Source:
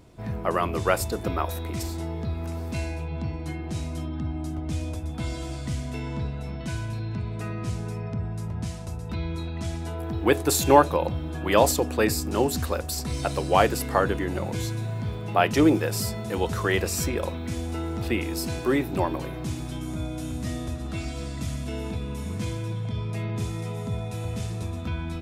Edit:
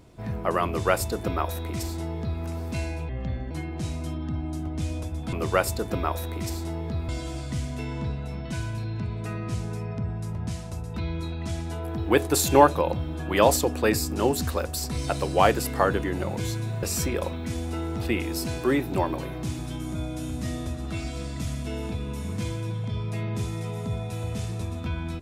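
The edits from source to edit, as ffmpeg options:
ffmpeg -i in.wav -filter_complex "[0:a]asplit=6[link_01][link_02][link_03][link_04][link_05][link_06];[link_01]atrim=end=3.094[link_07];[link_02]atrim=start=3.09:end=3.42,asetpts=PTS-STARTPTS,asetrate=34839,aresample=44100[link_08];[link_03]atrim=start=3.416:end=5.242[link_09];[link_04]atrim=start=0.658:end=2.422[link_10];[link_05]atrim=start=5.238:end=14.982[link_11];[link_06]atrim=start=16.838[link_12];[link_07][link_08]acrossfade=duration=0.004:curve1=hsin:curve2=hsin[link_13];[link_13][link_09]acrossfade=duration=0.004:curve1=hsin:curve2=hsin[link_14];[link_14][link_10]acrossfade=duration=0.004:curve1=hsin:curve2=hsin[link_15];[link_15][link_11]acrossfade=duration=0.004:curve1=hsin:curve2=hsin[link_16];[link_16][link_12]acrossfade=duration=0.004:curve1=hsin:curve2=hsin" out.wav

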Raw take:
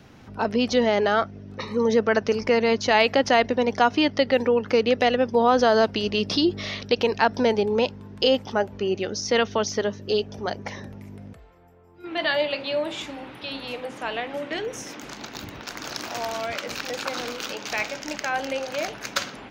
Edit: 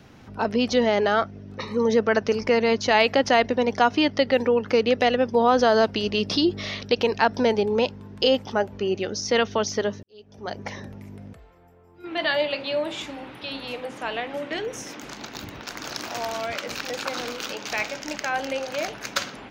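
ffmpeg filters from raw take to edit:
ffmpeg -i in.wav -filter_complex "[0:a]asplit=2[link_01][link_02];[link_01]atrim=end=10.03,asetpts=PTS-STARTPTS,afade=type=out:start_time=10.026:duration=0.004:curve=hsin[link_03];[link_02]atrim=start=10.03,asetpts=PTS-STARTPTS,afade=type=in:duration=0.57:curve=qua[link_04];[link_03][link_04]concat=n=2:v=0:a=1" out.wav

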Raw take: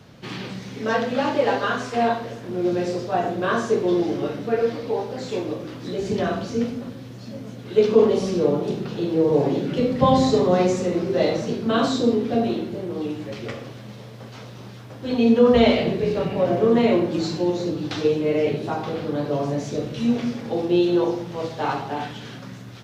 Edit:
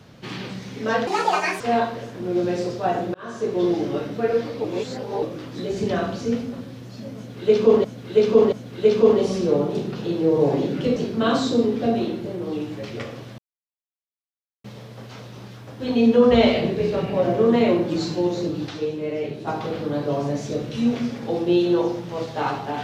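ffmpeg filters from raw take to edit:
ffmpeg -i in.wav -filter_complex "[0:a]asplit=12[link_01][link_02][link_03][link_04][link_05][link_06][link_07][link_08][link_09][link_10][link_11][link_12];[link_01]atrim=end=1.074[link_13];[link_02]atrim=start=1.07:end=1.89,asetpts=PTS-STARTPTS,asetrate=67914,aresample=44100[link_14];[link_03]atrim=start=1.886:end=3.43,asetpts=PTS-STARTPTS,afade=type=out:start_time=1.54:duration=0.004:curve=hsin[link_15];[link_04]atrim=start=3.43:end=4.932,asetpts=PTS-STARTPTS,afade=type=in:duration=0.51[link_16];[link_05]atrim=start=4.928:end=5.512,asetpts=PTS-STARTPTS,areverse[link_17];[link_06]atrim=start=5.508:end=8.132[link_18];[link_07]atrim=start=7.448:end=8.132[link_19];[link_08]atrim=start=7.448:end=9.892[link_20];[link_09]atrim=start=11.448:end=13.87,asetpts=PTS-STARTPTS,afade=type=out:start_time=2.418:duration=0.004:curve=hsin,apad=pad_dur=1.26[link_21];[link_10]atrim=start=13.87:end=17.912,asetpts=PTS-STARTPTS,afade=type=in:duration=0.004:curve=hsin[link_22];[link_11]atrim=start=17.908:end=18.702,asetpts=PTS-STARTPTS,volume=-6dB[link_23];[link_12]atrim=start=18.698[link_24];[link_13][link_14]acrossfade=duration=0.004:curve1=hsin:curve2=hsin[link_25];[link_15][link_16]concat=n=2:v=0:a=1[link_26];[link_25][link_26]acrossfade=duration=0.004:curve1=hsin:curve2=hsin[link_27];[link_27][link_17]acrossfade=duration=0.004:curve1=hsin:curve2=hsin[link_28];[link_28][link_18]acrossfade=duration=0.004:curve1=hsin:curve2=hsin[link_29];[link_29][link_19]acrossfade=duration=0.004:curve1=hsin:curve2=hsin[link_30];[link_30][link_20]acrossfade=duration=0.004:curve1=hsin:curve2=hsin[link_31];[link_21][link_22]concat=n=2:v=0:a=1[link_32];[link_31][link_32]acrossfade=duration=0.004:curve1=hsin:curve2=hsin[link_33];[link_33][link_23]acrossfade=duration=0.004:curve1=hsin:curve2=hsin[link_34];[link_34][link_24]acrossfade=duration=0.004:curve1=hsin:curve2=hsin" out.wav

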